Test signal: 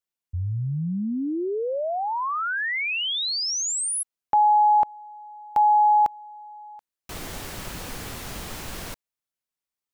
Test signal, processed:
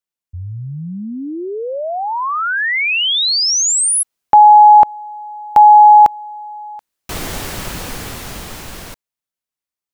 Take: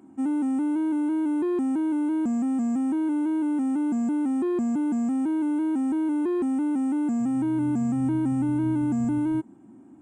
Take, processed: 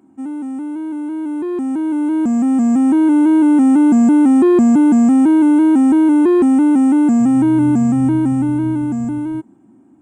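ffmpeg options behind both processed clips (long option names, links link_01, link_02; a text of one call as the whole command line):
ffmpeg -i in.wav -af "dynaudnorm=framelen=370:gausssize=13:maxgain=15.5dB" out.wav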